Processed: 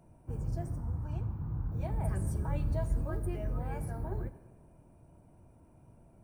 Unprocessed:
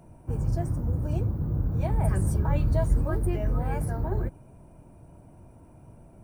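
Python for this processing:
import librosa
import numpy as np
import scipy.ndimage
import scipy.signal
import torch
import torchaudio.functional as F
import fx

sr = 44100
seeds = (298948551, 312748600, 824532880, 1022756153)

y = fx.curve_eq(x, sr, hz=(120.0, 580.0, 880.0, 9900.0), db=(0, -8, 6, -8), at=(0.78, 1.72))
y = fx.rev_schroeder(y, sr, rt60_s=1.4, comb_ms=27, drr_db=13.5)
y = F.gain(torch.from_numpy(y), -8.5).numpy()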